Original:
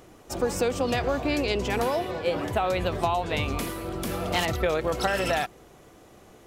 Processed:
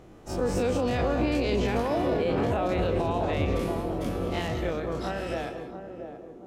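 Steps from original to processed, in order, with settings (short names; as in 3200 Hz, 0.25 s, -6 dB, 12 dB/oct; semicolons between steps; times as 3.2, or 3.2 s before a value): spectral dilation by 60 ms; Doppler pass-by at 1.69, 6 m/s, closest 4.5 m; high shelf 7600 Hz -11 dB; narrowing echo 0.68 s, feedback 54%, band-pass 340 Hz, level -6 dB; non-linear reverb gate 0.23 s rising, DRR 9.5 dB; limiter -21.5 dBFS, peak gain reduction 11 dB; low shelf 440 Hz +7.5 dB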